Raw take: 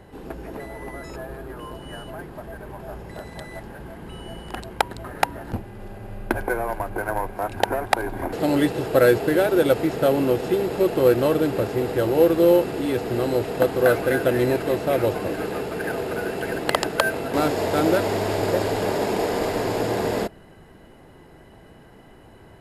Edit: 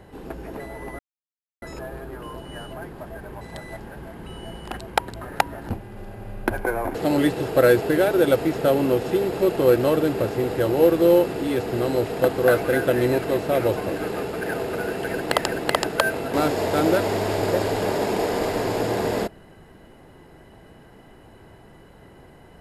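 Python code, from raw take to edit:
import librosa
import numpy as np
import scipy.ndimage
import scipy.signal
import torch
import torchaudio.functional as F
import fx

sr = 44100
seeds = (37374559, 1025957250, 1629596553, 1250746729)

y = fx.edit(x, sr, fx.insert_silence(at_s=0.99, length_s=0.63),
    fx.cut(start_s=2.78, length_s=0.46),
    fx.cut(start_s=6.68, length_s=1.55),
    fx.repeat(start_s=16.48, length_s=0.38, count=2), tone=tone)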